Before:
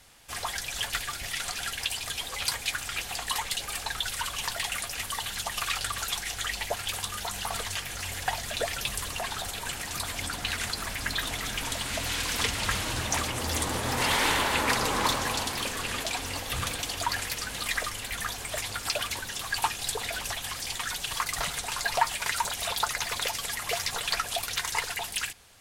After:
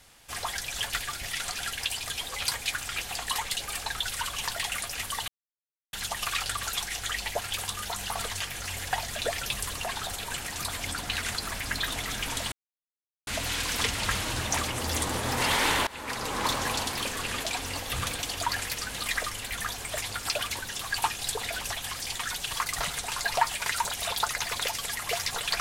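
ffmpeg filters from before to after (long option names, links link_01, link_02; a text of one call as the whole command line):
ffmpeg -i in.wav -filter_complex "[0:a]asplit=4[link_01][link_02][link_03][link_04];[link_01]atrim=end=5.28,asetpts=PTS-STARTPTS,afade=type=out:start_time=5.276:duration=0.004:curve=hsin,apad=pad_dur=0.65[link_05];[link_02]atrim=start=5.28:end=11.87,asetpts=PTS-STARTPTS,afade=type=in:duration=0.004:curve=hsin,afade=type=out:start_time=6.586:duration=0.004:curve=hsin,apad=pad_dur=0.75[link_06];[link_03]atrim=start=11.87:end=14.47,asetpts=PTS-STARTPTS,afade=type=in:duration=0.004:curve=hsin,afade=type=out:start_time=2.596:duration=0.004:curve=hsin:silence=0.0891251[link_07];[link_04]atrim=start=14.47,asetpts=PTS-STARTPTS,afade=type=in:duration=0.77:silence=0.0891251[link_08];[link_05][link_06][link_07][link_08]concat=n=4:v=0:a=1" out.wav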